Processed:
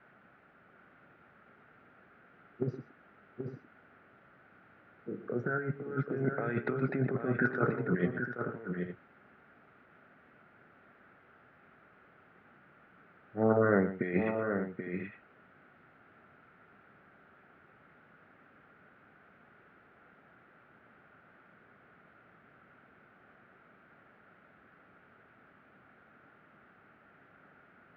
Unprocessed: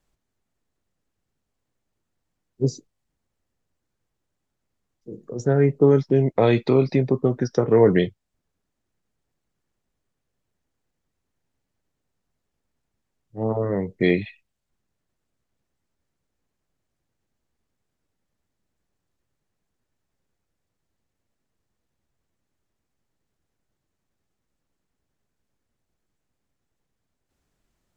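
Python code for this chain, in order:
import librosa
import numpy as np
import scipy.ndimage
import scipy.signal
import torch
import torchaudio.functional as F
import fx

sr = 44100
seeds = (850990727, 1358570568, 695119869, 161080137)

y = fx.peak_eq(x, sr, hz=1500.0, db=12.5, octaves=0.46)
y = fx.over_compress(y, sr, threshold_db=-22.0, ratio=-0.5)
y = fx.dmg_noise_colour(y, sr, seeds[0], colour='pink', level_db=-53.0)
y = fx.cabinet(y, sr, low_hz=180.0, low_slope=12, high_hz=2000.0, hz=(320.0, 500.0, 980.0, 1400.0), db=(-4, -4, -10, 9))
y = fx.echo_multitap(y, sr, ms=(118, 781, 859), db=(-13.5, -7.0, -13.0))
y = y * 10.0 ** (-4.0 / 20.0)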